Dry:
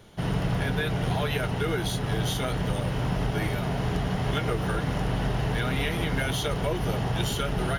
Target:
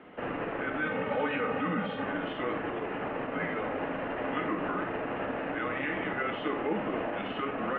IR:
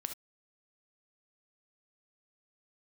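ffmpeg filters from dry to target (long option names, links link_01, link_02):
-filter_complex "[0:a]asettb=1/sr,asplit=3[link_01][link_02][link_03];[link_01]atrim=end=0.824[link_04];[link_02]atrim=start=0.82:end=2.05,asetpts=PTS-STARTPTS,afade=type=in:duration=0.004:curve=qsin,afade=type=out:start_time=1.226:duration=0.004:curve=qsin,aecho=1:1:3:0.67,atrim=end_sample=54243[link_05];[link_03]atrim=start=2.046[link_06];[link_04][link_05]acrossfade=duration=0.004:curve1=hsin:curve2=qsin[link_07];[link_07][link_06]acrossfade=duration=0.004:curve1=qsin:curve2=hsin,alimiter=level_in=1dB:limit=-24dB:level=0:latency=1:release=79,volume=-1dB[link_08];[1:a]atrim=start_sample=2205[link_09];[link_08][link_09]afir=irnorm=-1:irlink=0,highpass=frequency=370:width_type=q:width=0.5412,highpass=frequency=370:width_type=q:width=1.307,lowpass=frequency=2600:width_type=q:width=0.5176,lowpass=frequency=2600:width_type=q:width=0.7071,lowpass=frequency=2600:width_type=q:width=1.932,afreqshift=-150,volume=7.5dB"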